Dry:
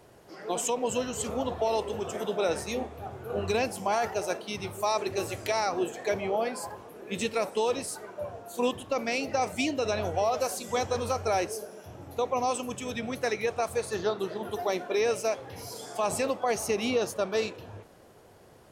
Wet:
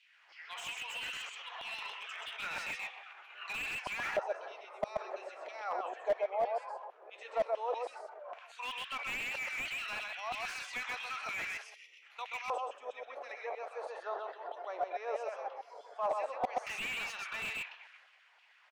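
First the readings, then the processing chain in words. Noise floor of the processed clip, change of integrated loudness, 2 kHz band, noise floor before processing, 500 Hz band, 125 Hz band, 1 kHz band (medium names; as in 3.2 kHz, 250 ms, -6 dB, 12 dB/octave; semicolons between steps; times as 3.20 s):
-64 dBFS, -8.5 dB, -1.5 dB, -55 dBFS, -11.0 dB, -22.5 dB, -7.5 dB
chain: time-frequency box 11.64–12.02 s, 540–1800 Hz -27 dB; low-pass 7.8 kHz 12 dB/octave; transient shaper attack +1 dB, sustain +8 dB; LFO high-pass saw down 3.1 Hz 730–3100 Hz; on a send: delay 129 ms -4 dB; on the sum: LFO band-pass square 0.12 Hz 560–2400 Hz; brick-wall FIR high-pass 240 Hz; slew-rate limiter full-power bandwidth 36 Hz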